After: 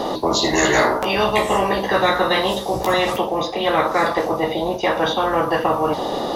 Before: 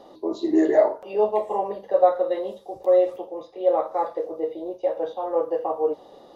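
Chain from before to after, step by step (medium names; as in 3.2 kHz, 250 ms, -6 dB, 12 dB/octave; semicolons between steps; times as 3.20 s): 0.63–2.94 s: doubling 16 ms -4.5 dB; spectrum-flattening compressor 4:1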